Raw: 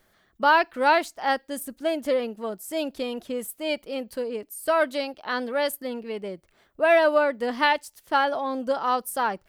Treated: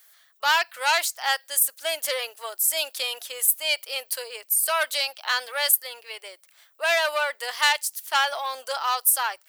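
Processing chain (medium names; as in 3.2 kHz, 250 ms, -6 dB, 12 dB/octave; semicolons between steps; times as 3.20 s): Bessel high-pass 770 Hz, order 6; tilt EQ +4.5 dB/octave; in parallel at -0.5 dB: gain riding within 5 dB 0.5 s; on the sum: short-mantissa float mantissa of 8-bit; transformer saturation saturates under 3.8 kHz; trim -4 dB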